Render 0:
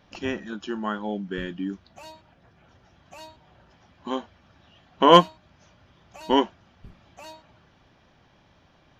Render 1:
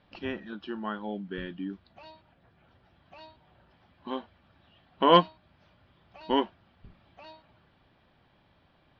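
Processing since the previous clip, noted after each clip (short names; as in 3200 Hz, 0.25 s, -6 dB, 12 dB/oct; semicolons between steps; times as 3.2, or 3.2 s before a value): steep low-pass 4700 Hz 48 dB/oct; gain -5.5 dB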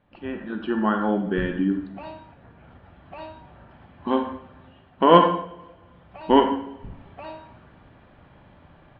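AGC gain up to 13 dB; air absorption 440 m; reverb, pre-delay 38 ms, DRR 4.5 dB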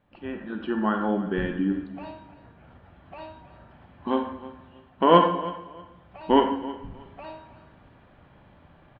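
feedback echo 0.317 s, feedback 23%, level -17.5 dB; gain -2.5 dB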